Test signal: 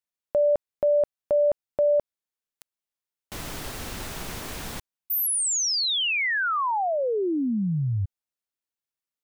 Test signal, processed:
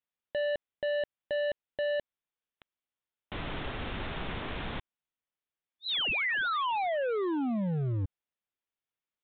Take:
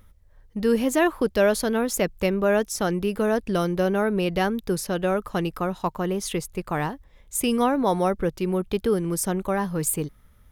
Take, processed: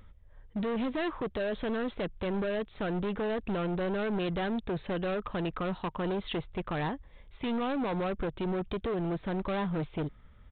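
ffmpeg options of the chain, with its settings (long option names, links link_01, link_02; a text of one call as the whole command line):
ffmpeg -i in.wav -af "alimiter=limit=-18dB:level=0:latency=1:release=108,aresample=8000,asoftclip=type=hard:threshold=-29dB,aresample=44100" out.wav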